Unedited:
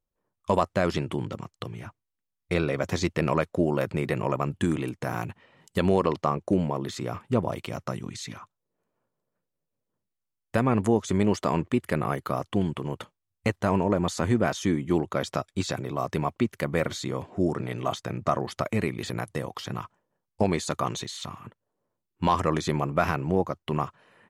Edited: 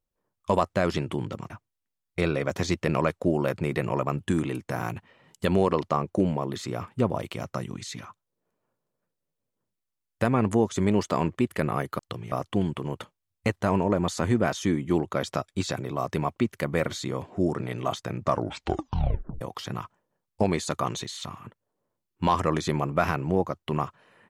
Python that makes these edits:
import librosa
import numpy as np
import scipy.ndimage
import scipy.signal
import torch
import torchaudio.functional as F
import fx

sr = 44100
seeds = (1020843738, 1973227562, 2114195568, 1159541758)

y = fx.edit(x, sr, fx.move(start_s=1.5, length_s=0.33, to_s=12.32),
    fx.tape_stop(start_s=18.24, length_s=1.17), tone=tone)